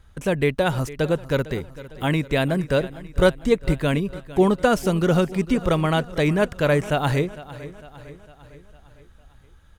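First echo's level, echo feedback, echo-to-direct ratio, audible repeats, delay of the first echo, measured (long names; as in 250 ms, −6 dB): −17.0 dB, 54%, −15.5 dB, 4, 454 ms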